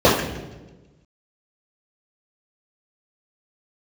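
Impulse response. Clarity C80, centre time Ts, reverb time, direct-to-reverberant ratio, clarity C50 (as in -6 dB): 7.0 dB, 46 ms, 1.2 s, -10.0 dB, 3.5 dB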